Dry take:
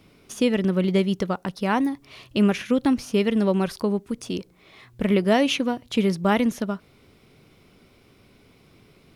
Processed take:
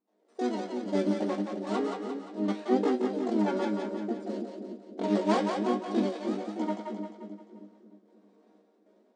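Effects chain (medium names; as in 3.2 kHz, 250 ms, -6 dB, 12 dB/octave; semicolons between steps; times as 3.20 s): median filter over 41 samples; trance gate ".xxxxxx.." 169 bpm -12 dB; flange 0.3 Hz, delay 1.3 ms, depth 5.6 ms, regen -13%; chord resonator G#2 minor, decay 0.2 s; level rider gain up to 7.5 dB; one-sided clip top -24.5 dBFS, bottom -17.5 dBFS; FFT band-pass 190–6100 Hz; harmony voices +7 st 0 dB; peaking EQ 2.6 kHz -5.5 dB 0.41 oct; two-band feedback delay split 480 Hz, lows 310 ms, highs 175 ms, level -4.5 dB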